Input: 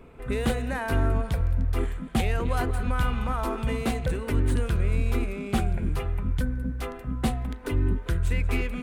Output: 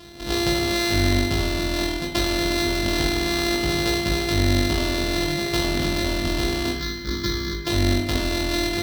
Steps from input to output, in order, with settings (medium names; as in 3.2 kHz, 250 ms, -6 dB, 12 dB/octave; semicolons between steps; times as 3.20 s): sorted samples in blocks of 128 samples; high-pass 56 Hz; high-order bell 4 kHz +9.5 dB 1.1 oct; in parallel at -1 dB: compressor with a negative ratio -29 dBFS; 6.72–7.67 s: on the sum: static phaser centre 2.7 kHz, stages 6; on a send: flutter echo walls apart 3.4 m, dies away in 0.33 s; on the sum: spring tank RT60 1.3 s, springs 52 ms, chirp 45 ms, DRR 6 dB; trim -3 dB